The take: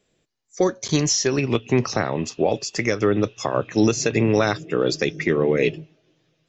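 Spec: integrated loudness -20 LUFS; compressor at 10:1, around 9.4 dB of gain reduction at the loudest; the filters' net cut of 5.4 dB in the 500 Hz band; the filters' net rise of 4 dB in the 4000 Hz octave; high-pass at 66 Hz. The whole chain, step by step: HPF 66 Hz; bell 500 Hz -7 dB; bell 4000 Hz +5.5 dB; compressor 10:1, threshold -25 dBFS; gain +10 dB

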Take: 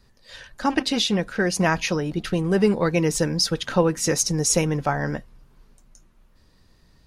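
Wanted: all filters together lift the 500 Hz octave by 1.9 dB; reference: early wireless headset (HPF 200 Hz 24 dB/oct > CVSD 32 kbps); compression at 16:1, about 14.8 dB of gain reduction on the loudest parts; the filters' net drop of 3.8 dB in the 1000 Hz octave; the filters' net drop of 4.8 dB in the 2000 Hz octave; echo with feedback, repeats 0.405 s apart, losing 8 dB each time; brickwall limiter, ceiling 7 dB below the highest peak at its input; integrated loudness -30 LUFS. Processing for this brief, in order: bell 500 Hz +3.5 dB; bell 1000 Hz -5.5 dB; bell 2000 Hz -4.5 dB; compressor 16:1, threshold -27 dBFS; limiter -23.5 dBFS; HPF 200 Hz 24 dB/oct; feedback echo 0.405 s, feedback 40%, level -8 dB; CVSD 32 kbps; gain +5.5 dB

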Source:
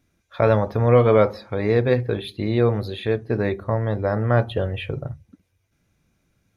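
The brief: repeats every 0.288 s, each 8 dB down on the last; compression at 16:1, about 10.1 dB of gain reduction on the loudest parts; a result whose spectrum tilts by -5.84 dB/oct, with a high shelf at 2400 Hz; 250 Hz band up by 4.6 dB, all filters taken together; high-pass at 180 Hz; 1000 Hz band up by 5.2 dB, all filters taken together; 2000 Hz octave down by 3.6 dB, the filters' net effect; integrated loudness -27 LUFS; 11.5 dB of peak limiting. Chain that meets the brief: HPF 180 Hz; bell 250 Hz +7 dB; bell 1000 Hz +9 dB; bell 2000 Hz -7.5 dB; high shelf 2400 Hz -3 dB; compressor 16:1, threshold -17 dBFS; limiter -16 dBFS; feedback echo 0.288 s, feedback 40%, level -8 dB

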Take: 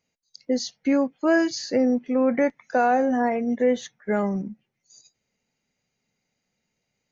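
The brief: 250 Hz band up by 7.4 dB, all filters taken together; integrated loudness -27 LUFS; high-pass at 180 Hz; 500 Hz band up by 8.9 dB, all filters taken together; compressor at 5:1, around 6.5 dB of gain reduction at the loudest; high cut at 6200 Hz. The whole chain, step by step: HPF 180 Hz; LPF 6200 Hz; bell 250 Hz +7 dB; bell 500 Hz +8.5 dB; compressor 5:1, threshold -15 dBFS; gain -6.5 dB

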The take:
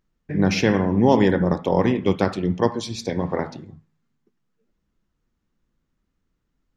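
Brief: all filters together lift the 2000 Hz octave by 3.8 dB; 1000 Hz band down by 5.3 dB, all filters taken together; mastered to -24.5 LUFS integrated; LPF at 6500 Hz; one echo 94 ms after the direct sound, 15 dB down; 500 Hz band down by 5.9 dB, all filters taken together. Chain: LPF 6500 Hz; bell 500 Hz -6.5 dB; bell 1000 Hz -5.5 dB; bell 2000 Hz +6.5 dB; echo 94 ms -15 dB; gain -1.5 dB

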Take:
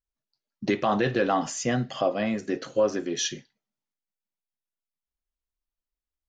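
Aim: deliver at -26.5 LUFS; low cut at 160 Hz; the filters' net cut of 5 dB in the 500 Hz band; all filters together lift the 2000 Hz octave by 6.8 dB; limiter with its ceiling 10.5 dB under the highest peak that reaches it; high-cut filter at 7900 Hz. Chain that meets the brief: HPF 160 Hz; LPF 7900 Hz; bell 500 Hz -6.5 dB; bell 2000 Hz +8.5 dB; gain +5.5 dB; limiter -16 dBFS

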